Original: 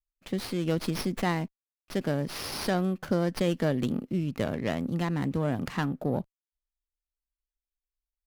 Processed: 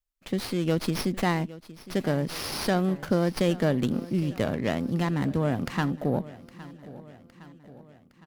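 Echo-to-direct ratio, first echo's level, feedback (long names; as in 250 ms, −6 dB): −16.5 dB, −18.0 dB, 56%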